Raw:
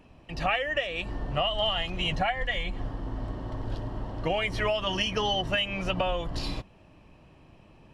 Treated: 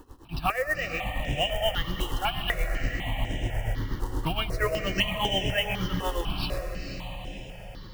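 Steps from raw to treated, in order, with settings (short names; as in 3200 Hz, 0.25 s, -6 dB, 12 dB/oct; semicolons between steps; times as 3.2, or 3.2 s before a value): in parallel at 0 dB: compressor 6:1, threshold -40 dBFS, peak gain reduction 16.5 dB; on the sum: short-mantissa float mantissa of 2-bit; tremolo 8.4 Hz, depth 84%; diffused feedback echo 0.483 s, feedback 53%, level -8 dB; on a send at -11 dB: reverb RT60 5.3 s, pre-delay 0.11 s; on the sum: step phaser 4 Hz 650–4400 Hz; gain +4.5 dB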